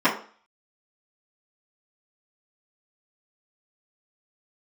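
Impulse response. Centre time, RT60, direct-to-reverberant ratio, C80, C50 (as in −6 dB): 21 ms, 0.45 s, −15.0 dB, 13.5 dB, 8.5 dB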